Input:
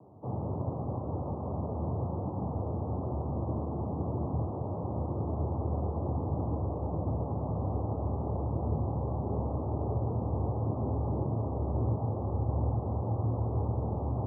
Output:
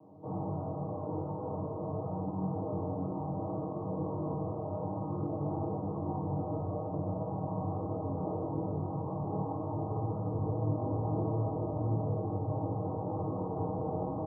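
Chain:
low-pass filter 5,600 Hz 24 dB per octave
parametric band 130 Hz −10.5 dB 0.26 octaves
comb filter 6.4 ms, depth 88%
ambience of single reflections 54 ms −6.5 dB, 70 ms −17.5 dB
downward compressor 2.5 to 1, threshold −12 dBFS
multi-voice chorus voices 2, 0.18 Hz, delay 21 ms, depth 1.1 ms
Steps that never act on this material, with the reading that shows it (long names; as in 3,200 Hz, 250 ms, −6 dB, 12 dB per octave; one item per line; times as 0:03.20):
low-pass filter 5,600 Hz: nothing at its input above 1,000 Hz
downward compressor, threshold −12 dBFS: peak of its input −18.0 dBFS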